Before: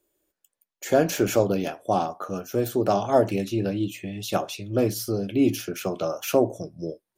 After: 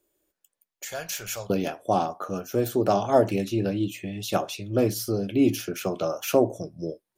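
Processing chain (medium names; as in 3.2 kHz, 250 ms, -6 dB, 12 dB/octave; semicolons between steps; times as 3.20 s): 0.85–1.50 s: amplifier tone stack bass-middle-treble 10-0-10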